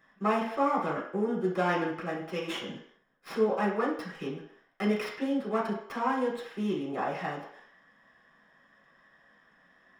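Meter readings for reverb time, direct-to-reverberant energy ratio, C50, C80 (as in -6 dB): 0.65 s, -5.5 dB, 4.5 dB, 8.5 dB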